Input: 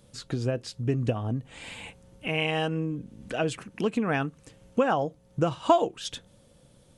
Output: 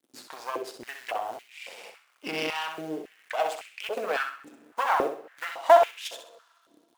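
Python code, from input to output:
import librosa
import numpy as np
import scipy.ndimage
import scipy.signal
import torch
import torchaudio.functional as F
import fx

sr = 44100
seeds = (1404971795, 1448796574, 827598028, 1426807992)

p1 = fx.quant_companded(x, sr, bits=6)
p2 = np.sign(p1) * np.maximum(np.abs(p1) - 10.0 ** (-53.5 / 20.0), 0.0)
p3 = fx.rev_double_slope(p2, sr, seeds[0], early_s=0.36, late_s=2.3, knee_db=-17, drr_db=11.5)
p4 = np.maximum(p3, 0.0)
p5 = p4 + fx.echo_feedback(p4, sr, ms=64, feedback_pct=33, wet_db=-7, dry=0)
y = fx.filter_held_highpass(p5, sr, hz=3.6, low_hz=290.0, high_hz=2400.0)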